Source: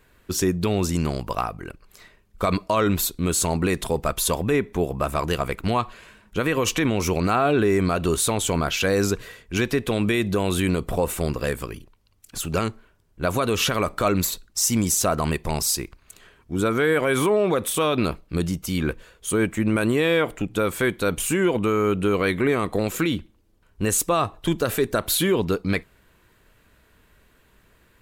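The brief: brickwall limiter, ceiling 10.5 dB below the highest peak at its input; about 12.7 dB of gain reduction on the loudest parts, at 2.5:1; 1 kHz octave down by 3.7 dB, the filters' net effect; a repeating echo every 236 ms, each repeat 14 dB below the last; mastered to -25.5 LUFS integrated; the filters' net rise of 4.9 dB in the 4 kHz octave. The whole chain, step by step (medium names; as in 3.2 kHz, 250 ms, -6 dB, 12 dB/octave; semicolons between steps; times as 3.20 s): peaking EQ 1 kHz -5.5 dB; peaking EQ 4 kHz +6.5 dB; compression 2.5:1, threshold -37 dBFS; peak limiter -29.5 dBFS; feedback delay 236 ms, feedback 20%, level -14 dB; trim +14.5 dB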